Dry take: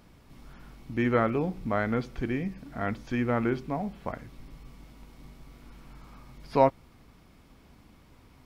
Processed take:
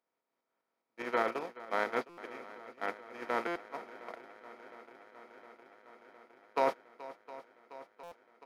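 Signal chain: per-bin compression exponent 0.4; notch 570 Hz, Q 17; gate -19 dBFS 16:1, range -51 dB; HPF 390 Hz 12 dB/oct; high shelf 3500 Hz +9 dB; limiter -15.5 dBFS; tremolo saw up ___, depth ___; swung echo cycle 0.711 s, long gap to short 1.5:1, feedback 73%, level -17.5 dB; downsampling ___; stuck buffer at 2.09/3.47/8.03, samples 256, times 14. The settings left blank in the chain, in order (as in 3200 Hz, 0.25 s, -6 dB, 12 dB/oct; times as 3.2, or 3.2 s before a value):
4.9 Hz, 40%, 32000 Hz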